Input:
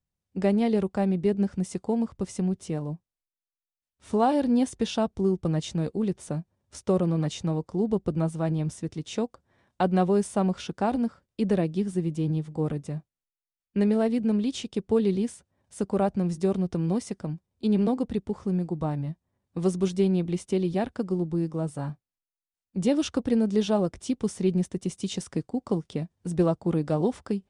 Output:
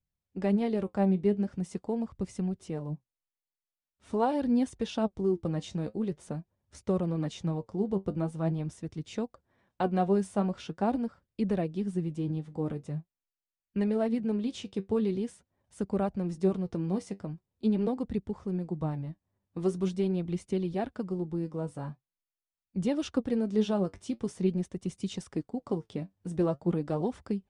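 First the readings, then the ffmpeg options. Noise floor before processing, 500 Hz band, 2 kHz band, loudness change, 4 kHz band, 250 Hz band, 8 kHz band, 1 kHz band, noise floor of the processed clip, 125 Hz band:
below −85 dBFS, −4.5 dB, −5.0 dB, −4.5 dB, −7.0 dB, −4.5 dB, −9.0 dB, −4.5 dB, below −85 dBFS, −5.0 dB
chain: -af "highshelf=frequency=4500:gain=-6.5,flanger=delay=0.4:depth=10:regen=59:speed=0.44:shape=sinusoidal"

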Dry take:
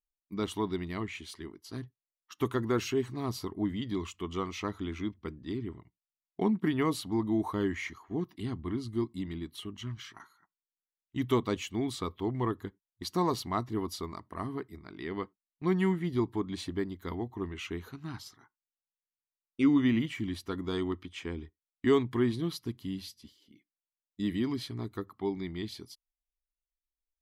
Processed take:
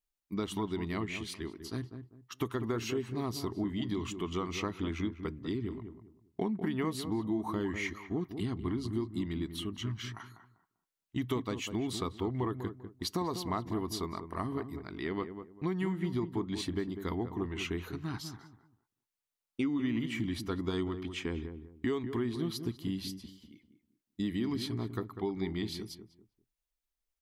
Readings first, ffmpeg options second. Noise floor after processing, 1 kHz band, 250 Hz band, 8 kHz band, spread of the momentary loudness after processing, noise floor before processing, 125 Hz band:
below −85 dBFS, −3.0 dB, −2.5 dB, +0.5 dB, 8 LU, below −85 dBFS, −1.0 dB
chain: -filter_complex "[0:a]acompressor=threshold=-33dB:ratio=6,asplit=2[link_01][link_02];[link_02]adelay=197,lowpass=frequency=990:poles=1,volume=-8dB,asplit=2[link_03][link_04];[link_04]adelay=197,lowpass=frequency=990:poles=1,volume=0.28,asplit=2[link_05][link_06];[link_06]adelay=197,lowpass=frequency=990:poles=1,volume=0.28[link_07];[link_01][link_03][link_05][link_07]amix=inputs=4:normalize=0,volume=3dB"

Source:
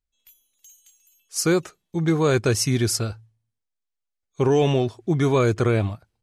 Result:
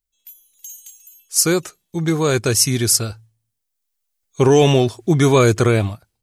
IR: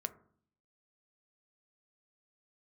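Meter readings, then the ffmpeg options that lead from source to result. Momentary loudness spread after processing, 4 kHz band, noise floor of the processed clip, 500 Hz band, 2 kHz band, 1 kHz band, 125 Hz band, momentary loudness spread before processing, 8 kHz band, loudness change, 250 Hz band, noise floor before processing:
14 LU, +8.0 dB, −77 dBFS, +5.0 dB, +5.0 dB, +5.5 dB, +4.5 dB, 7 LU, +10.5 dB, +5.5 dB, +4.0 dB, −82 dBFS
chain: -af "crystalizer=i=2:c=0,dynaudnorm=framelen=260:gausssize=5:maxgain=11dB,volume=-1dB"

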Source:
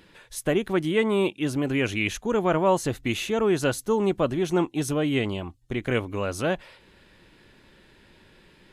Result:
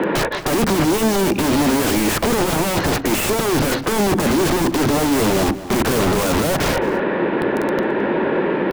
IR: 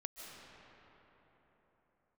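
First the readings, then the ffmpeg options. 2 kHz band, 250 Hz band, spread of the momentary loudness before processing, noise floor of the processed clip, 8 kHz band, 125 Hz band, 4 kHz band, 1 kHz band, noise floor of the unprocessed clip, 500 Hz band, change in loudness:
+9.0 dB, +9.0 dB, 8 LU, −25 dBFS, +13.5 dB, +7.5 dB, +10.5 dB, +10.5 dB, −57 dBFS, +7.0 dB, +7.5 dB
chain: -filter_complex "[0:a]acrossover=split=270|690|3400[link_01][link_02][link_03][link_04];[link_02]acompressor=threshold=-37dB:ratio=12[link_05];[link_01][link_05][link_03][link_04]amix=inputs=4:normalize=0,acrossover=split=170 4100:gain=0.0794 1 0.0708[link_06][link_07][link_08];[link_06][link_07][link_08]amix=inputs=3:normalize=0,adynamicsmooth=sensitivity=1:basefreq=1800,asplit=2[link_09][link_10];[link_10]highpass=frequency=720:poles=1,volume=37dB,asoftclip=type=tanh:threshold=-15dB[link_11];[link_09][link_11]amix=inputs=2:normalize=0,lowpass=frequency=3400:poles=1,volume=-6dB,aeval=exprs='(mod(16.8*val(0)+1,2)-1)/16.8':channel_layout=same,tiltshelf=frequency=890:gain=7.5,bandreject=frequency=60:width_type=h:width=6,bandreject=frequency=120:width_type=h:width=6,bandreject=frequency=180:width_type=h:width=6,bandreject=frequency=240:width_type=h:width=6,bandreject=frequency=300:width_type=h:width=6,asplit=2[link_12][link_13];[link_13]adelay=215.7,volume=-16dB,highshelf=frequency=4000:gain=-4.85[link_14];[link_12][link_14]amix=inputs=2:normalize=0,alimiter=level_in=21.5dB:limit=-1dB:release=50:level=0:latency=1,volume=-8.5dB"

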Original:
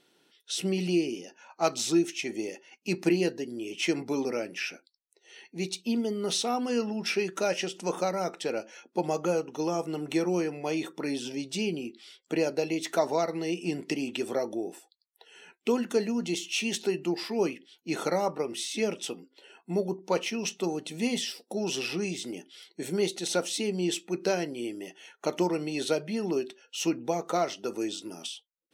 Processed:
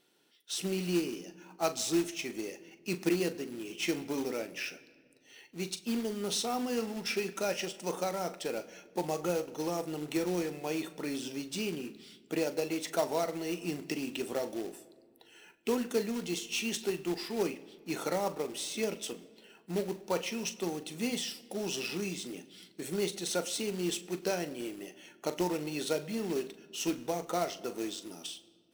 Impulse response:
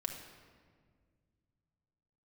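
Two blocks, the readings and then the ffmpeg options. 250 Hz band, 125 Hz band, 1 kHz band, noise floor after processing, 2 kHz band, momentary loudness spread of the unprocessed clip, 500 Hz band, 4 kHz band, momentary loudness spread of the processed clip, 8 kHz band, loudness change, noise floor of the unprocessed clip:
−4.5 dB, −4.5 dB, −4.5 dB, −63 dBFS, −4.0 dB, 9 LU, −4.5 dB, −3.5 dB, 9 LU, −2.0 dB, −4.0 dB, −74 dBFS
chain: -filter_complex "[0:a]highshelf=frequency=11000:gain=8,acrusher=bits=3:mode=log:mix=0:aa=0.000001,asplit=2[link_01][link_02];[1:a]atrim=start_sample=2205,adelay=40[link_03];[link_02][link_03]afir=irnorm=-1:irlink=0,volume=-12.5dB[link_04];[link_01][link_04]amix=inputs=2:normalize=0,volume=-5dB"

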